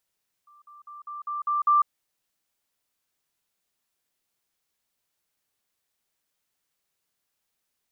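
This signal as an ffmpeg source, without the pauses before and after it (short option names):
-f lavfi -i "aevalsrc='pow(10,(-52+6*floor(t/0.2))/20)*sin(2*PI*1180*t)*clip(min(mod(t,0.2),0.15-mod(t,0.2))/0.005,0,1)':d=1.4:s=44100"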